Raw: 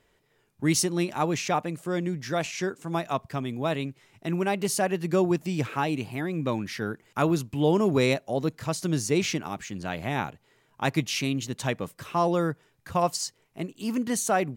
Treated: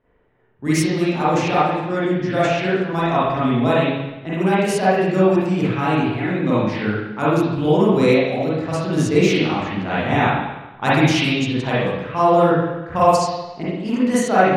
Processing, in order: level-controlled noise filter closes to 1.5 kHz, open at -22 dBFS; spring tank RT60 1 s, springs 38/42/58 ms, chirp 30 ms, DRR -9.5 dB; gain riding 2 s; trim -1 dB

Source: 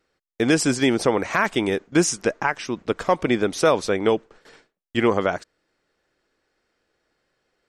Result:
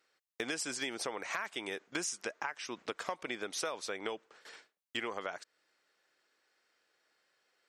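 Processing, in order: high-pass 1.2 kHz 6 dB/octave; compression 6:1, threshold -35 dBFS, peak gain reduction 16 dB

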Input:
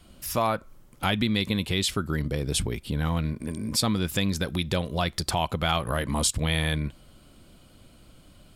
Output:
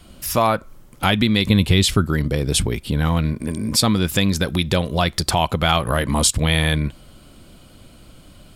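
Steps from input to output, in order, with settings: 1.45–2.05 s: bass shelf 150 Hz +10 dB; trim +7.5 dB

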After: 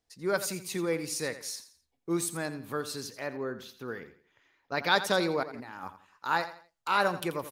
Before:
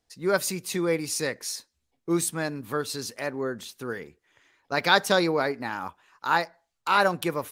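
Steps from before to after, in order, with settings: 3.07–4.91 s: peaking EQ 8.6 kHz -14 dB 0.6 oct; 5.43–5.83 s: compressor with a negative ratio -40 dBFS, ratio -1; feedback delay 85 ms, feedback 33%, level -13 dB; trim -5 dB

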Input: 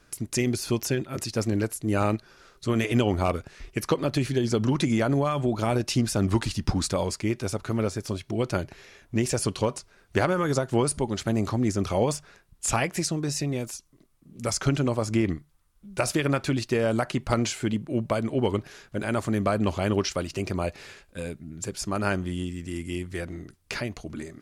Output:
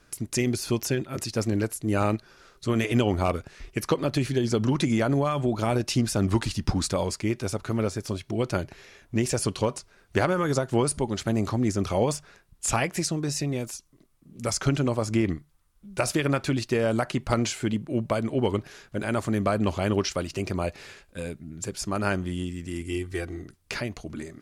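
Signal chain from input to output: 22.81–23.42 s: comb 2.6 ms, depth 57%

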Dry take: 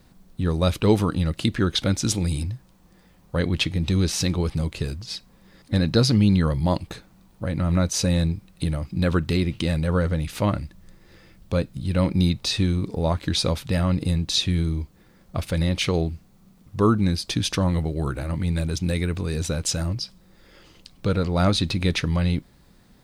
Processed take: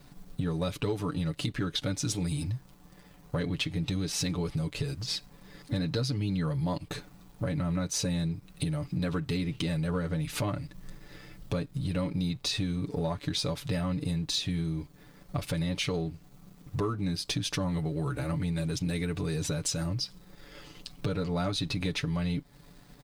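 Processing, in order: comb 6.9 ms, depth 76%; compression 5:1, threshold -30 dBFS, peak gain reduction 18 dB; waveshaping leveller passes 1; trim -2.5 dB

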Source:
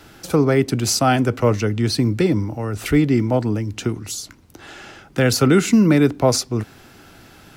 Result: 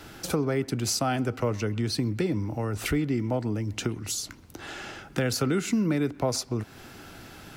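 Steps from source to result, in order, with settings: compression 2.5:1, threshold -28 dBFS, peak gain reduction 12 dB; on a send: feedback echo behind a band-pass 129 ms, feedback 48%, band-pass 1.4 kHz, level -21 dB

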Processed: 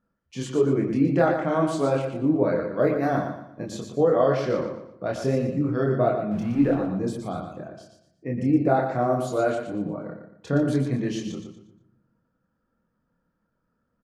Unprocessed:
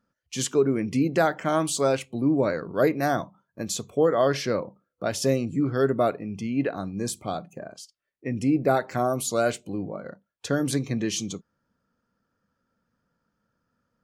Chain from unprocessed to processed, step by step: 6.31–6.74 s: jump at every zero crossing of -33.5 dBFS; low-pass 1.2 kHz 6 dB/octave; de-hum 108.7 Hz, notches 30; chorus voices 6, 1.2 Hz, delay 26 ms, depth 3 ms; feedback delay 118 ms, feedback 33%, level -7 dB; reverberation RT60 0.95 s, pre-delay 6 ms, DRR 13.5 dB; trim +4.5 dB

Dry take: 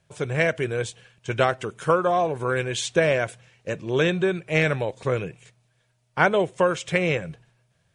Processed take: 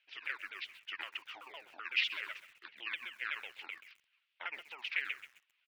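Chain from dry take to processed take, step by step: sawtooth pitch modulation -10 st, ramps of 178 ms; compression 5:1, threshold -26 dBFS, peak gain reduction 11 dB; ladder band-pass 3.1 kHz, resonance 55%; tempo 1.4×; distance through air 300 m; bit-crushed delay 131 ms, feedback 35%, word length 11-bit, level -14 dB; trim +14 dB

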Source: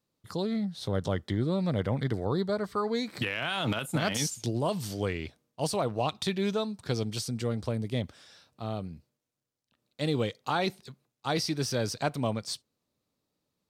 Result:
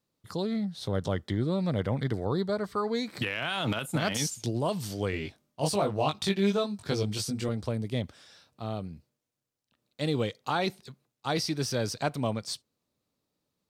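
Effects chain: 5.11–7.49 s: doubling 20 ms -2.5 dB

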